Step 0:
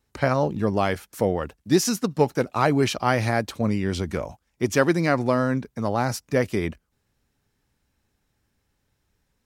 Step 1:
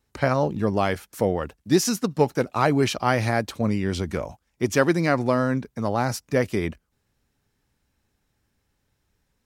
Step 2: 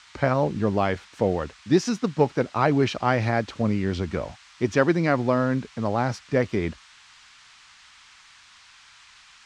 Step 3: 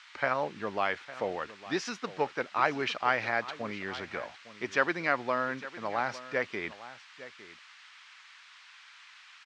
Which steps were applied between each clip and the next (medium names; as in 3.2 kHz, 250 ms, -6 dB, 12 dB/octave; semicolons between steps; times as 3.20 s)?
no audible change
band noise 1–9.5 kHz -47 dBFS; distance through air 130 m
band-pass filter 2 kHz, Q 0.78; delay 857 ms -16 dB